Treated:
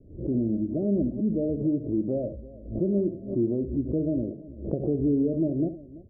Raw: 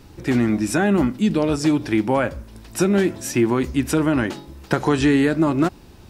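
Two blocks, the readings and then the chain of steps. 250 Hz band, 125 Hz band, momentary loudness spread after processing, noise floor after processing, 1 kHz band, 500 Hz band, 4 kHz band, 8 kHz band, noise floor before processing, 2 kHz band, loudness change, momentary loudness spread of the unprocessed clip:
−7.0 dB, −6.5 dB, 7 LU, −45 dBFS, below −25 dB, −7.0 dB, below −40 dB, below −40 dB, −45 dBFS, below −40 dB, −7.5 dB, 7 LU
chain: Butterworth low-pass 650 Hz 96 dB per octave
multi-tap delay 69/336 ms −12/−19 dB
background raised ahead of every attack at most 110 dB per second
level −7.5 dB

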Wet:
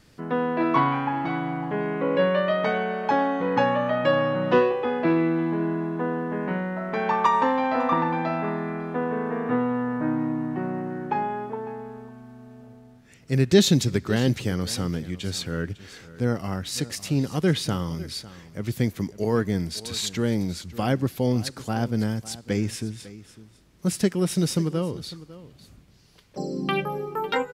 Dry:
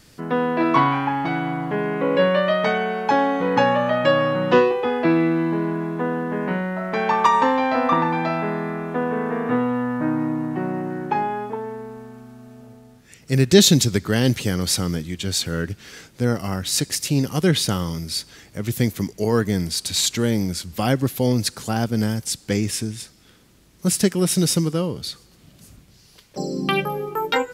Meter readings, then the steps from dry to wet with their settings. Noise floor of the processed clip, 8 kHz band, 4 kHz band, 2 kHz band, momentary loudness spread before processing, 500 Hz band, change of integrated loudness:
−53 dBFS, −10.0 dB, −7.5 dB, −4.5 dB, 10 LU, −3.5 dB, −4.0 dB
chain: high-shelf EQ 4,400 Hz −8.5 dB
on a send: single-tap delay 552 ms −17.5 dB
on the sum: level −3.5 dB

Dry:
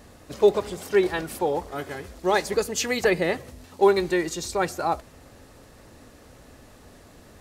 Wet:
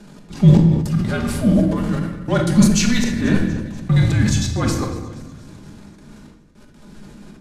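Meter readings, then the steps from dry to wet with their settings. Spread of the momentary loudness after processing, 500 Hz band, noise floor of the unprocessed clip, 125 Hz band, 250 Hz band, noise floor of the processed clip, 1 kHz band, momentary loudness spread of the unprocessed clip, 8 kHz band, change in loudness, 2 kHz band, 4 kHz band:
11 LU, −4.5 dB, −51 dBFS, +23.5 dB, +14.0 dB, −46 dBFS, −4.0 dB, 11 LU, +7.0 dB, +7.0 dB, +1.0 dB, +5.0 dB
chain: gate pattern "xx.xxx...x.xxxx" 158 BPM −60 dB
in parallel at −9.5 dB: hard clipping −21.5 dBFS, distortion −7 dB
on the sum: parametric band 460 Hz +13 dB 0.46 octaves
frequency shifter −250 Hz
transient designer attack −5 dB, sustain +7 dB
low-pass filter 9,700 Hz 12 dB per octave
mains-hum notches 60/120/180/240 Hz
feedback echo with a high-pass in the loop 241 ms, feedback 59%, high-pass 1,000 Hz, level −18.5 dB
rectangular room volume 720 cubic metres, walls mixed, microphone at 1.3 metres
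level that may fall only so fast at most 62 dB per second
level −1.5 dB

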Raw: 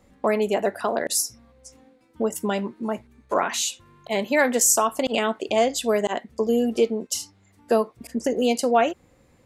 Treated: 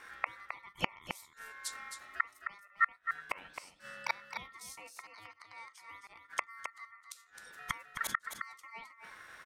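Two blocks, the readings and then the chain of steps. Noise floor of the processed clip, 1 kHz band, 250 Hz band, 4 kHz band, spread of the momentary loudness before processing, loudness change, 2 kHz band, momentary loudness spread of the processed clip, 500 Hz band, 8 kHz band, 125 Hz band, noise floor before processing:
−65 dBFS, −14.0 dB, −31.0 dB, −16.0 dB, 9 LU, −16.5 dB, −7.0 dB, 15 LU, −32.5 dB, −23.5 dB, can't be measured, −59 dBFS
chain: gate with flip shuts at −22 dBFS, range −36 dB
ring modulation 1,600 Hz
single-tap delay 264 ms −7.5 dB
level +8 dB

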